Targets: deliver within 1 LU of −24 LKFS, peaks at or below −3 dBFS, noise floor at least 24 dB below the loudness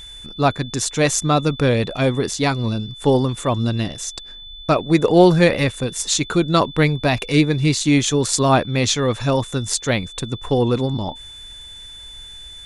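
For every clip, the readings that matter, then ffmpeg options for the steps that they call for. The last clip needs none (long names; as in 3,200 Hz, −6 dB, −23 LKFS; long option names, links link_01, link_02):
interfering tone 3,500 Hz; level of the tone −36 dBFS; integrated loudness −18.5 LKFS; sample peak −1.5 dBFS; target loudness −24.0 LKFS
→ -af "bandreject=frequency=3500:width=30"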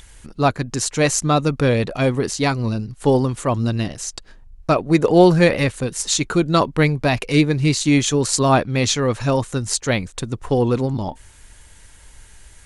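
interfering tone none found; integrated loudness −19.0 LKFS; sample peak −1.5 dBFS; target loudness −24.0 LKFS
→ -af "volume=-5dB"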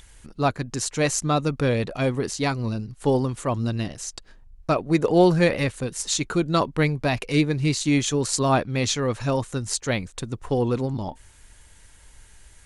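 integrated loudness −24.0 LKFS; sample peak −6.5 dBFS; background noise floor −51 dBFS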